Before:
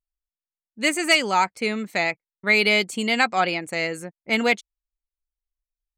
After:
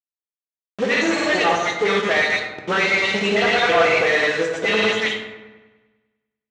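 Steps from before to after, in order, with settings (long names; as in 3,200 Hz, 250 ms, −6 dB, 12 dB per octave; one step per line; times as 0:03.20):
every frequency bin delayed by itself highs late, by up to 135 ms
dynamic equaliser 310 Hz, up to −6 dB, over −38 dBFS, Q 0.97
mid-hump overdrive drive 28 dB, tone 1,900 Hz, clips at −9 dBFS
granular cloud, pitch spread up and down by 0 semitones
bit reduction 5 bits
asymmetric clip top −21 dBFS
loudspeaker in its box 130–6,600 Hz, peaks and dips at 160 Hz −6 dB, 280 Hz −3 dB, 500 Hz +6 dB, 3,600 Hz +3 dB, 5,200 Hz −6 dB
delay with a low-pass on its return 91 ms, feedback 59%, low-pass 1,800 Hz, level −11 dB
on a send at −1.5 dB: convolution reverb RT60 0.80 s, pre-delay 6 ms
on the sum: wrong playback speed 48 kHz file played as 44.1 kHz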